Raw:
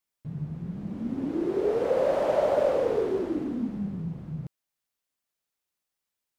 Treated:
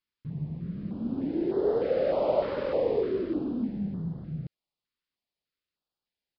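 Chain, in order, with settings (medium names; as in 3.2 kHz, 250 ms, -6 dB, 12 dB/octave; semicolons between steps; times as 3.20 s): resampled via 11.025 kHz; step-sequenced notch 3.3 Hz 690–2400 Hz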